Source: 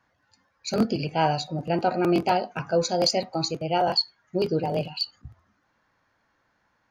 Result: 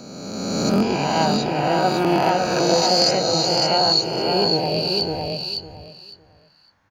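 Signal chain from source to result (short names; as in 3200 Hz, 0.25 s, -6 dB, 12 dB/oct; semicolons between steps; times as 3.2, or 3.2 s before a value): spectral swells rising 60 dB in 1.92 s; feedback echo 0.557 s, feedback 19%, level -4 dB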